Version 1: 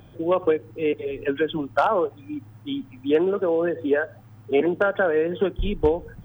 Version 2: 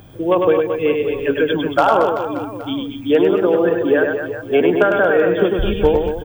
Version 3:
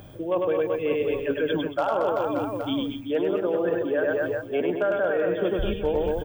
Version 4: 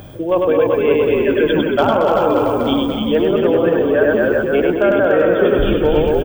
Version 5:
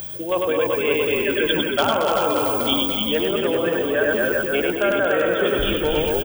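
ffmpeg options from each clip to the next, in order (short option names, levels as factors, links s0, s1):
-af "highshelf=f=5900:g=7,aecho=1:1:100|225|381.2|576.6|820.7:0.631|0.398|0.251|0.158|0.1,volume=1.78"
-af "equalizer=f=590:t=o:w=0.22:g=7,areverse,acompressor=threshold=0.112:ratio=6,areverse,volume=0.75"
-filter_complex "[0:a]asplit=6[s0][s1][s2][s3][s4][s5];[s1]adelay=292,afreqshift=-58,volume=0.668[s6];[s2]adelay=584,afreqshift=-116,volume=0.24[s7];[s3]adelay=876,afreqshift=-174,volume=0.0871[s8];[s4]adelay=1168,afreqshift=-232,volume=0.0313[s9];[s5]adelay=1460,afreqshift=-290,volume=0.0112[s10];[s0][s6][s7][s8][s9][s10]amix=inputs=6:normalize=0,volume=2.82"
-af "crystalizer=i=9:c=0,volume=0.376"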